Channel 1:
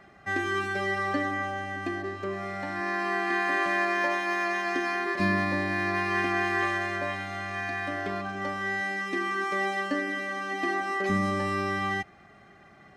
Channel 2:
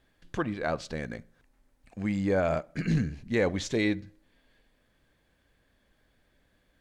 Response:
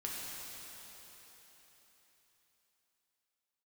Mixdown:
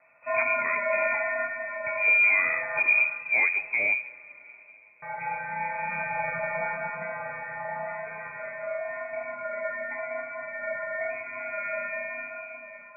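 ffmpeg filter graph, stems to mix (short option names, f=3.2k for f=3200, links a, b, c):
-filter_complex "[0:a]highshelf=f=2k:g=10.5,acontrast=62,volume=-8.5dB,asplit=3[a][b][c];[a]atrim=end=2.8,asetpts=PTS-STARTPTS,afade=t=out:st=2.796:d=0.004:c=hsin[d];[b]atrim=start=2.8:end=5.02,asetpts=PTS-STARTPTS,volume=0[e];[c]atrim=start=5.02,asetpts=PTS-STARTPTS,afade=t=in:d=0.004:c=hsin[f];[d][e][f]concat=n=3:v=0:a=1,asplit=2[g][h];[h]volume=-3.5dB[i];[1:a]equalizer=f=190:t=o:w=0.77:g=11,volume=1.5dB,asplit=3[j][k][l];[k]volume=-18dB[m];[l]apad=whole_len=571823[n];[g][n]sidechaingate=range=-33dB:threshold=-59dB:ratio=16:detection=peak[o];[2:a]atrim=start_sample=2205[p];[i][m]amix=inputs=2:normalize=0[q];[q][p]afir=irnorm=-1:irlink=0[r];[o][j][r]amix=inputs=3:normalize=0,flanger=delay=4.7:depth=7.1:regen=-46:speed=0.91:shape=triangular,lowpass=f=2.2k:t=q:w=0.5098,lowpass=f=2.2k:t=q:w=0.6013,lowpass=f=2.2k:t=q:w=0.9,lowpass=f=2.2k:t=q:w=2.563,afreqshift=-2600"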